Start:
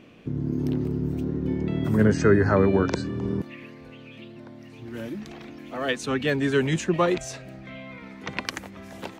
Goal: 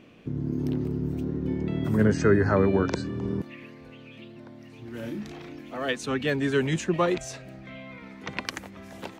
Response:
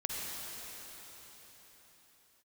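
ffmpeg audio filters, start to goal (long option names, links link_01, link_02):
-filter_complex "[0:a]asettb=1/sr,asplit=3[link_01][link_02][link_03];[link_01]atrim=end=4.994[link_04];[link_02]atrim=start=4.99:end=5.61,asetpts=PTS-STARTPTS,afade=type=in:duration=0.004:curve=qsin,afade=type=out:start_time=0.616:duration=0.004:curve=qsin,asplit=2[link_05][link_06];[link_06]adelay=34,volume=-4dB[link_07];[link_05][link_07]amix=inputs=2:normalize=0,atrim=end_sample=27342[link_08];[link_03]atrim=start=5.606[link_09];[link_04][link_08]acrossfade=duration=0.004:curve1=hsin:curve2=qsin[link_10];[link_10][link_09]acrossfade=duration=0.004:curve1=qsin:curve2=hsin,volume=-2dB"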